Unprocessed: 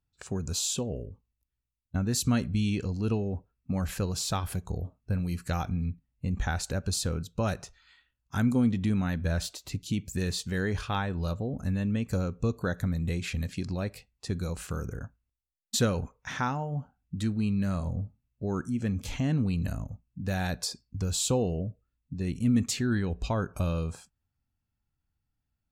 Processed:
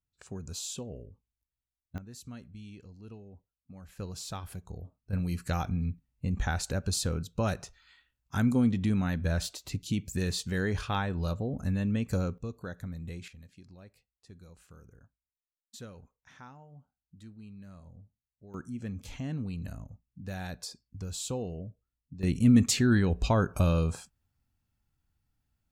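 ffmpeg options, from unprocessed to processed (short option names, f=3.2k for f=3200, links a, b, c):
-af "asetnsamples=n=441:p=0,asendcmd='1.98 volume volume -19dB;3.99 volume volume -9dB;5.13 volume volume -0.5dB;12.38 volume volume -10dB;13.28 volume volume -20dB;18.54 volume volume -8dB;22.23 volume volume 4dB',volume=-8dB"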